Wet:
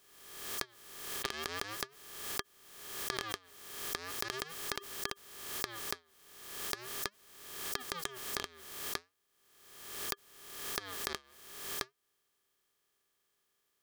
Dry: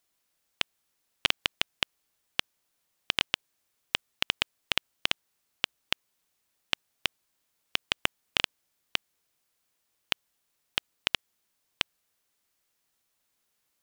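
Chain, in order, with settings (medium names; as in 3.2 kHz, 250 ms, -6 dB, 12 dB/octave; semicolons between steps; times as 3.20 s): spectral peaks clipped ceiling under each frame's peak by 16 dB; compression 4:1, threshold -35 dBFS, peak gain reduction 14 dB; flange 0.4 Hz, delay 0.2 ms, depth 7.1 ms, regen -86%; small resonant body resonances 400/1200/1700/3200 Hz, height 12 dB, ringing for 55 ms; swell ahead of each attack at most 52 dB/s; trim +2 dB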